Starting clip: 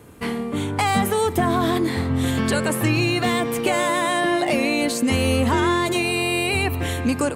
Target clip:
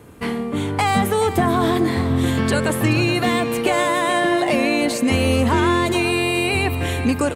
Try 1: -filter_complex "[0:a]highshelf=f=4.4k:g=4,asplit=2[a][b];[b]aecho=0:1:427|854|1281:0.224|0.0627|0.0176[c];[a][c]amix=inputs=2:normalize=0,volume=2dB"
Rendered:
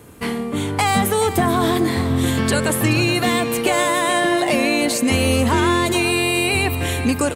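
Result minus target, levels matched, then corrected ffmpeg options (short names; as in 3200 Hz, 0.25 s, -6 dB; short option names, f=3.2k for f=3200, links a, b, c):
8000 Hz band +5.5 dB
-filter_complex "[0:a]highshelf=f=4.4k:g=-3.5,asplit=2[a][b];[b]aecho=0:1:427|854|1281:0.224|0.0627|0.0176[c];[a][c]amix=inputs=2:normalize=0,volume=2dB"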